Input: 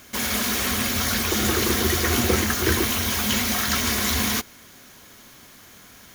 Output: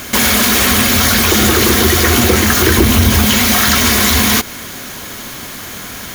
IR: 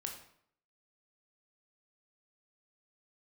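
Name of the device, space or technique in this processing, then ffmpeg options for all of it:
mastering chain: -filter_complex "[0:a]asettb=1/sr,asplit=3[link_01][link_02][link_03];[link_01]atrim=end=2.784[link_04];[link_02]atrim=start=2.78:end=3.26,asetpts=PTS-STARTPTS,afade=type=in:duration=0.004:curve=qsin,afade=type=out:start_time=0.476:duration=0.004:curve=qsin,lowshelf=frequency=340:gain=12[link_05];[link_03]atrim=start=3.256[link_06];[link_04][link_05]acrossfade=duration=0.004:curve1=hsin:curve2=qsin[link_07];[link_07][link_06]acrossfade=duration=0.004:curve1=qsin:curve2=hsin,equalizer=frequency=5700:width_type=o:width=0.33:gain=-2,acompressor=threshold=-25dB:ratio=2.5,asoftclip=type=hard:threshold=-17dB,alimiter=level_in=21dB:limit=-1dB:release=50:level=0:latency=1,volume=-1dB"

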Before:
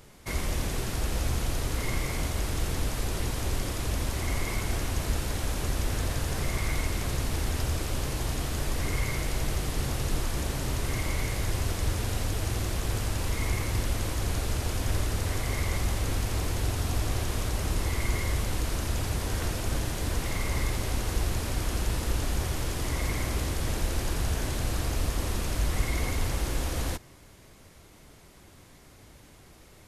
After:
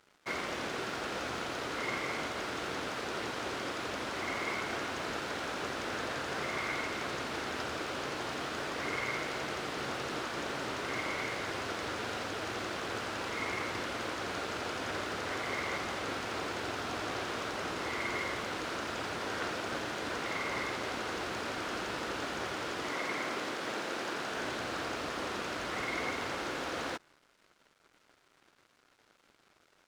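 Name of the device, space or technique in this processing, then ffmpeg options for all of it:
pocket radio on a weak battery: -filter_complex "[0:a]asettb=1/sr,asplit=3[link_01][link_02][link_03];[link_01]atrim=end=22.894[link_04];[link_02]atrim=start=22.89:end=24.36,asetpts=PTS-STARTPTS,afade=type=in:duration=0.004:curve=qsin,afade=type=out:start_time=1.466:duration=0.004:curve=qsin,highpass=160[link_05];[link_03]atrim=start=24.356[link_06];[link_04][link_05]acrossfade=duration=0.004:curve1=hsin:curve2=qsin[link_07];[link_07][link_06]acrossfade=duration=0.004:curve1=qsin:curve2=hsin,highpass=310,lowpass=4200,aeval=exprs='sgn(val(0))*max(abs(val(0))-0.00158,0)':channel_layout=same,equalizer=frequency=1400:width_type=o:width=0.42:gain=6,volume=1dB"

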